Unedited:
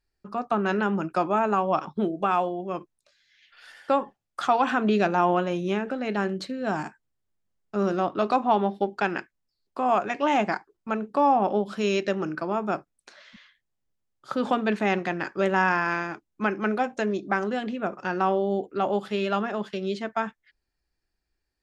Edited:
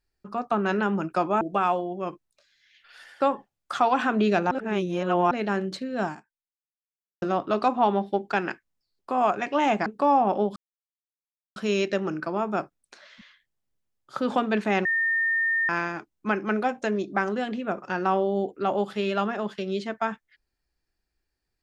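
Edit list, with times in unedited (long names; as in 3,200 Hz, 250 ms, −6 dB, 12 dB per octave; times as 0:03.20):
0:01.41–0:02.09: remove
0:05.19–0:05.99: reverse
0:06.73–0:07.90: fade out exponential
0:10.54–0:11.01: remove
0:11.71: splice in silence 1.00 s
0:15.00–0:15.84: beep over 1,820 Hz −21 dBFS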